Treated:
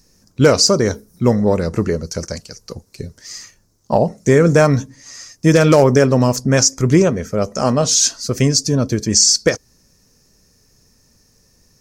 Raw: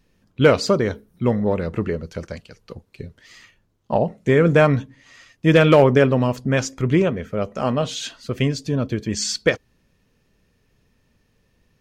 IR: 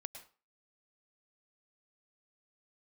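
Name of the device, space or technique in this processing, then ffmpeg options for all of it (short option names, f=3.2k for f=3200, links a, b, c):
over-bright horn tweeter: -af "highshelf=f=4.2k:t=q:w=3:g=10,alimiter=limit=-7.5dB:level=0:latency=1:release=198,volume=5.5dB"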